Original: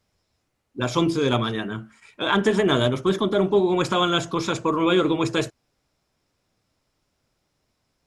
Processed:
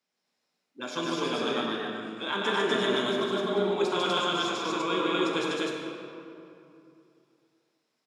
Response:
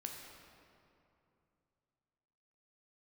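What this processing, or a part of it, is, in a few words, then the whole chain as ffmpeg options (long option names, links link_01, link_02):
stadium PA: -filter_complex "[0:a]highpass=frequency=190:width=0.5412,highpass=frequency=190:width=1.3066,equalizer=frequency=3300:width_type=o:width=2.7:gain=5.5,aecho=1:1:148.7|247.8:0.794|1[link_01];[1:a]atrim=start_sample=2205[link_02];[link_01][link_02]afir=irnorm=-1:irlink=0,volume=-9dB"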